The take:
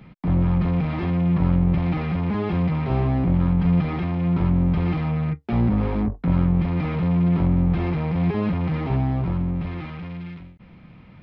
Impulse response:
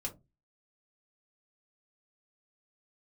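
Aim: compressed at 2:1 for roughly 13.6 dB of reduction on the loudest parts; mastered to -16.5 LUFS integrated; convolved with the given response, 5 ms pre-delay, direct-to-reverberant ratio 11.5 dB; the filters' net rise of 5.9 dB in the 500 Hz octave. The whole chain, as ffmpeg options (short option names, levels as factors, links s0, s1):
-filter_complex "[0:a]equalizer=f=500:t=o:g=7.5,acompressor=threshold=0.01:ratio=2,asplit=2[s0][s1];[1:a]atrim=start_sample=2205,adelay=5[s2];[s1][s2]afir=irnorm=-1:irlink=0,volume=0.266[s3];[s0][s3]amix=inputs=2:normalize=0,volume=7.5"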